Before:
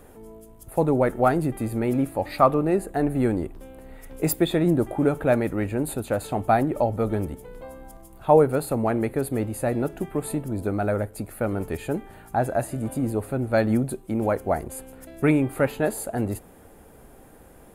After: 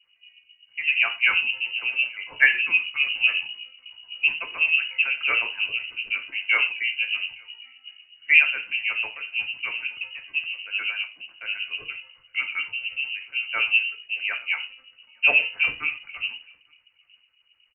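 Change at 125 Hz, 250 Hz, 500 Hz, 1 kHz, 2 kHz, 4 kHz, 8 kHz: under -30 dB, under -30 dB, -23.5 dB, -13.0 dB, +15.5 dB, +17.5 dB, under -40 dB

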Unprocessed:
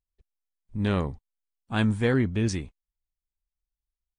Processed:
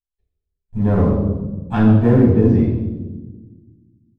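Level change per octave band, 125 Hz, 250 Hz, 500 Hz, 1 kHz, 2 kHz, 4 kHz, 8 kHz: +12.5 dB, +13.0 dB, +11.0 dB, +8.5 dB, -1.0 dB, n/a, under -15 dB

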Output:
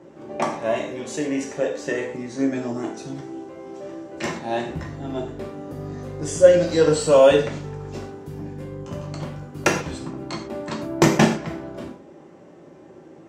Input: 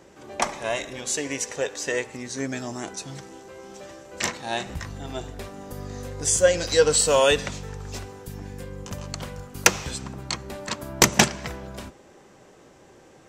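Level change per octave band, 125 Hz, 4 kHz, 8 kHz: +4.5, -5.5, -9.0 dB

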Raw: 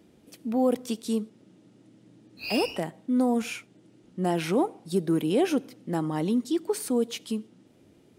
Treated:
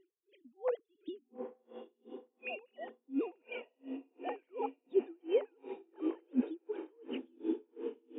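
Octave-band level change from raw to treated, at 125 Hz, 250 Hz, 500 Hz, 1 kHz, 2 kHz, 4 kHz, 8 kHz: under -30 dB, -13.0 dB, -8.5 dB, -12.5 dB, -11.0 dB, -19.0 dB, under -40 dB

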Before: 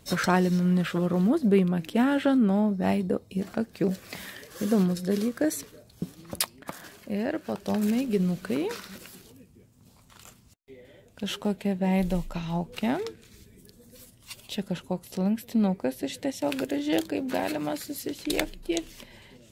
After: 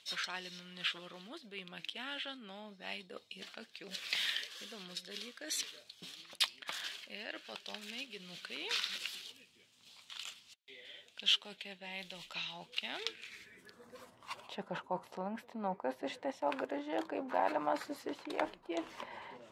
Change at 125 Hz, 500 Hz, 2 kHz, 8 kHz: -27.0, -13.0, -5.0, -8.5 dB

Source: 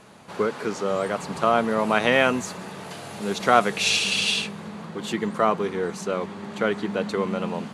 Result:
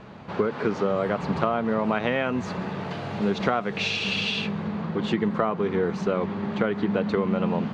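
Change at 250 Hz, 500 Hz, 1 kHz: +2.5, -1.5, -4.5 dB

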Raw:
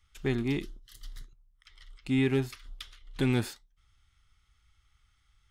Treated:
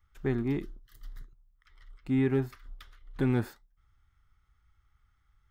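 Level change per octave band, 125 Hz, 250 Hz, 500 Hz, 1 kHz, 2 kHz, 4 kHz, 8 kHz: 0.0 dB, 0.0 dB, 0.0 dB, 0.0 dB, -4.5 dB, -12.0 dB, under -10 dB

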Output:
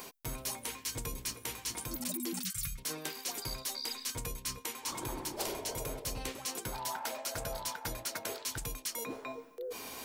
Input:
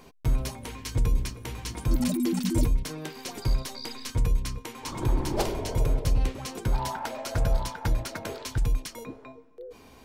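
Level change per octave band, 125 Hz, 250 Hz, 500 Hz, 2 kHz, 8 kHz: -17.5, -13.0, -7.0, -3.0, +2.5 dB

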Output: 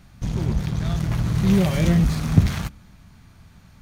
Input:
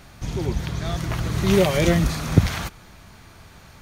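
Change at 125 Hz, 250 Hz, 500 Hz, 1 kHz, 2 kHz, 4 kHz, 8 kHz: +2.5, +2.0, -7.5, -4.5, -5.0, -5.0, -4.5 dB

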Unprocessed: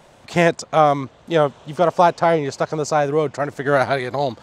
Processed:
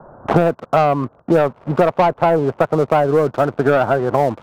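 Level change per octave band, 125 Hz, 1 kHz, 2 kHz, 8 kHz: +4.5 dB, +1.0 dB, -1.5 dB, under -10 dB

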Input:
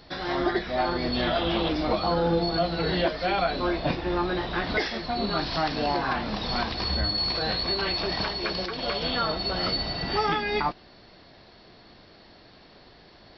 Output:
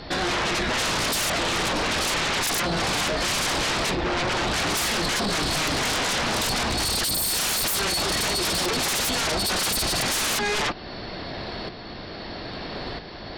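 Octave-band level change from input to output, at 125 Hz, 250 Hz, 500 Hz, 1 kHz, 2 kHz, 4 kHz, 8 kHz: +0.5 dB, -1.0 dB, -1.5 dB, +1.0 dB, +6.0 dB, +4.5 dB, n/a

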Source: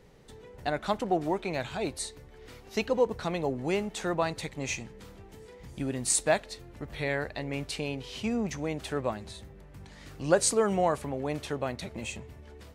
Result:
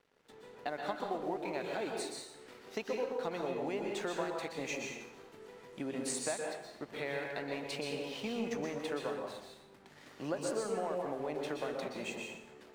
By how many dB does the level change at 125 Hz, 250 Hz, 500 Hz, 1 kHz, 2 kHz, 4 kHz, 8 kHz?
-13.0, -7.5, -6.5, -7.5, -6.0, -6.0, -11.5 dB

